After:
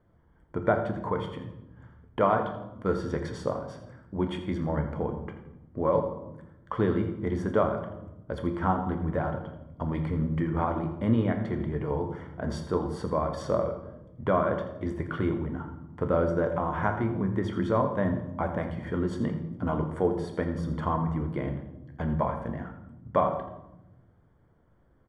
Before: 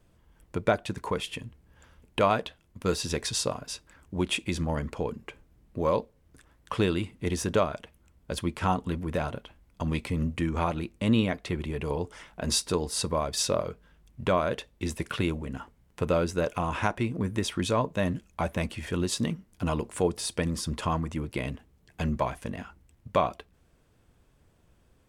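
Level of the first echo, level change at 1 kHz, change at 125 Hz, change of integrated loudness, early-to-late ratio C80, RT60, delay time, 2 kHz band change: -13.5 dB, +1.0 dB, +1.0 dB, 0.0 dB, 9.5 dB, 0.95 s, 84 ms, -3.0 dB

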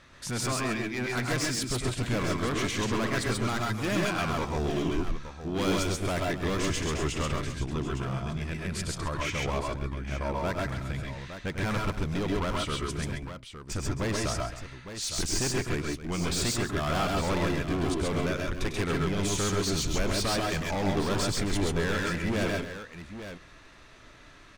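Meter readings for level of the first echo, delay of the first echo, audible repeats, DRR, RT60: -8.5 dB, 0.1 s, 4, none, none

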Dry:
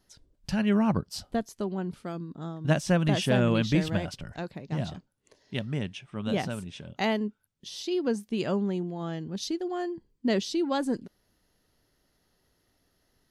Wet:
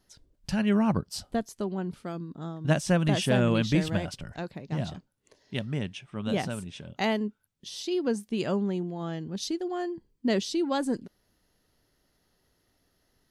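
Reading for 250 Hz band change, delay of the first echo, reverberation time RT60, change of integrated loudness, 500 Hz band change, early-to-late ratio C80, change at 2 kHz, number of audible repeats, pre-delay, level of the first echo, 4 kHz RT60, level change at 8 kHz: 0.0 dB, none, none, 0.0 dB, 0.0 dB, none, 0.0 dB, none, none, none, none, +2.0 dB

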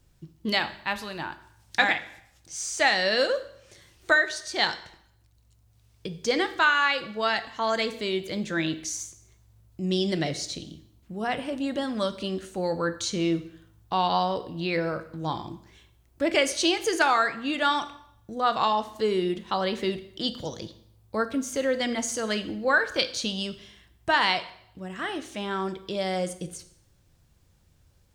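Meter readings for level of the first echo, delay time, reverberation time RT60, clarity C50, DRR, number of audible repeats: none, none, 0.70 s, 14.0 dB, 10.0 dB, none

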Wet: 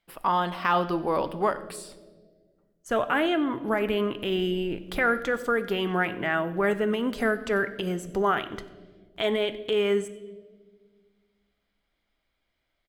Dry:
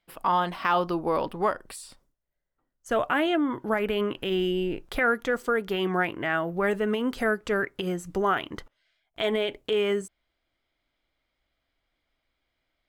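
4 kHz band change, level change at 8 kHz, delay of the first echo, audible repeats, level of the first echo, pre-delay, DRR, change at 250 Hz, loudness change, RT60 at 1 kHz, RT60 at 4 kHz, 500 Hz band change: +0.5 dB, 0.0 dB, 93 ms, 1, -21.0 dB, 5 ms, 11.5 dB, +0.5 dB, +0.5 dB, 1.4 s, 1.1 s, +0.5 dB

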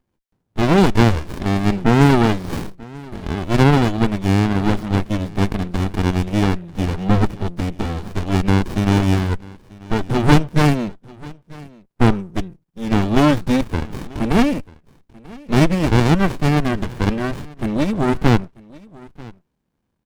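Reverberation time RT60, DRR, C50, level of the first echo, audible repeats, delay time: none, none, none, -22.5 dB, 1, 0.939 s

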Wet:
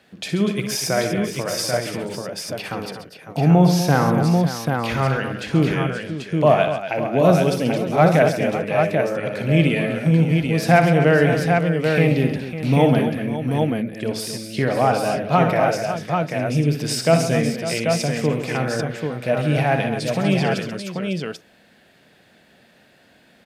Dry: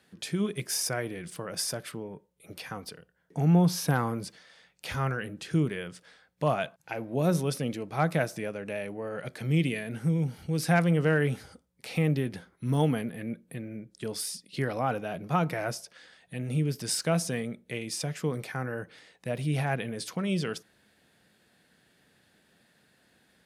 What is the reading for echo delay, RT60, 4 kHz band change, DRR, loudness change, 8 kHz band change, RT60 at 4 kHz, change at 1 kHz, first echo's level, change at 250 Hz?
61 ms, none, +9.0 dB, none, +10.5 dB, +5.5 dB, none, +12.5 dB, -8.5 dB, +10.5 dB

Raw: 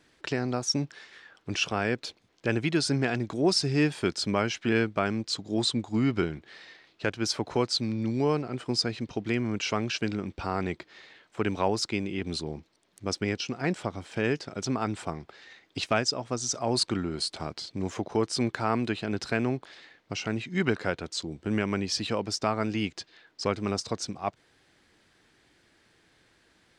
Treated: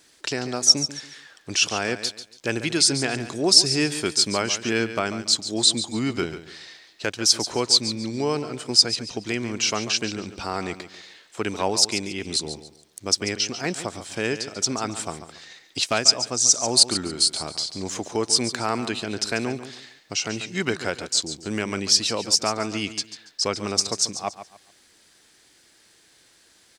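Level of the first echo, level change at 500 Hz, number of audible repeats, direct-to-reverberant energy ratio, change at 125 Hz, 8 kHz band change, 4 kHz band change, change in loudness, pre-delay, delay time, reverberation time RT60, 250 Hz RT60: -12.0 dB, +2.0 dB, 3, none, -2.0 dB, +15.0 dB, +11.5 dB, +7.0 dB, none, 0.141 s, none, none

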